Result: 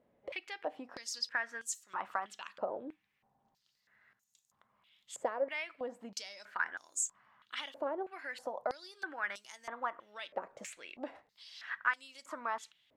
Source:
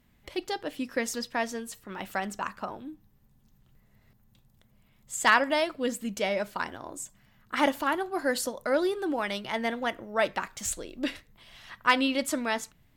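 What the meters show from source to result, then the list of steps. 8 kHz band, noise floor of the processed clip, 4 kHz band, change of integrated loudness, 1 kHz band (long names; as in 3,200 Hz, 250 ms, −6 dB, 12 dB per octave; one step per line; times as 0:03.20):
−5.5 dB, −80 dBFS, −10.5 dB, −10.0 dB, −10.0 dB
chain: dynamic equaliser 3,600 Hz, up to −6 dB, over −46 dBFS, Q 1
downward compressor 5 to 1, threshold −33 dBFS, peak gain reduction 14.5 dB
band-pass on a step sequencer 3.1 Hz 540–6,900 Hz
level +10 dB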